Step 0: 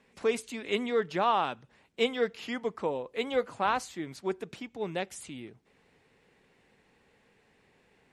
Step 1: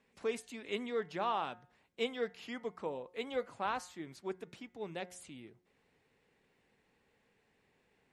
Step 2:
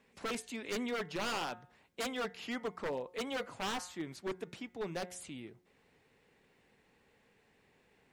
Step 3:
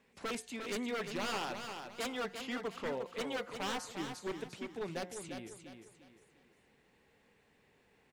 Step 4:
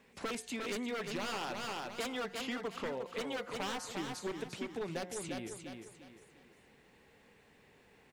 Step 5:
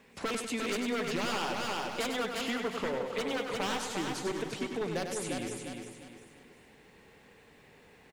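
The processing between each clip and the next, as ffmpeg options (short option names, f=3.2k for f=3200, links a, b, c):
-af "bandreject=f=179.8:t=h:w=4,bandreject=f=359.6:t=h:w=4,bandreject=f=539.4:t=h:w=4,bandreject=f=719.2:t=h:w=4,bandreject=f=899:t=h:w=4,bandreject=f=1.0788k:t=h:w=4,bandreject=f=1.2586k:t=h:w=4,bandreject=f=1.4384k:t=h:w=4,bandreject=f=1.6182k:t=h:w=4,bandreject=f=1.798k:t=h:w=4,bandreject=f=1.9778k:t=h:w=4,bandreject=f=2.1576k:t=h:w=4,volume=-8dB"
-af "aeval=exprs='0.0178*(abs(mod(val(0)/0.0178+3,4)-2)-1)':c=same,volume=4.5dB"
-af "aecho=1:1:351|702|1053|1404:0.447|0.152|0.0516|0.0176,volume=-1dB"
-af "acompressor=threshold=-41dB:ratio=6,volume=5.5dB"
-af "aecho=1:1:98|196|294|392|490|588:0.473|0.222|0.105|0.0491|0.0231|0.0109,volume=4.5dB"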